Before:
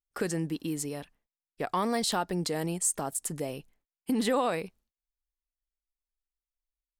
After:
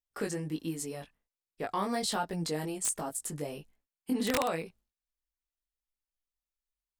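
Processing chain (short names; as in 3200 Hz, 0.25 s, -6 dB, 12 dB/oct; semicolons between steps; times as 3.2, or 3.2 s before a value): chorus 1.3 Hz, delay 18 ms, depth 2.3 ms; wrapped overs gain 20.5 dB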